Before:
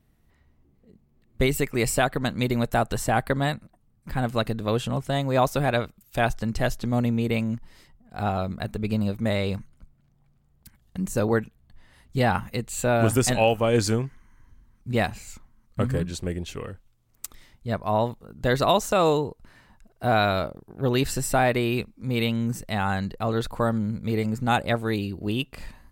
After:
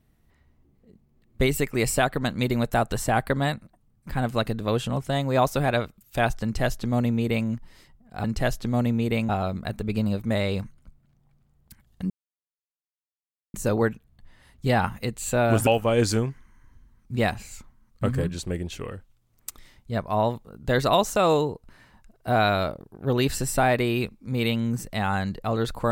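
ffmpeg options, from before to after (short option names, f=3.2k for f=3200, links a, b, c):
-filter_complex "[0:a]asplit=5[a][b][c][d][e];[a]atrim=end=8.242[f];[b]atrim=start=6.428:end=7.482[g];[c]atrim=start=8.238:end=11.05,asetpts=PTS-STARTPTS,afade=t=out:st=2.808:d=0.004:c=hsin,apad=pad_dur=1.44[h];[d]atrim=start=11.05:end=13.182,asetpts=PTS-STARTPTS,afade=t=in:d=0.004:c=hsin[i];[e]atrim=start=13.428[j];[f][g]acrossfade=d=0.004:c1=hsin:c2=hsin[k];[h][i]concat=n=2:v=0:a=1[l];[k][l]acrossfade=d=0.004:c1=hsin:c2=hsin[m];[m][j]acrossfade=d=0.004:c1=hsin:c2=hsin"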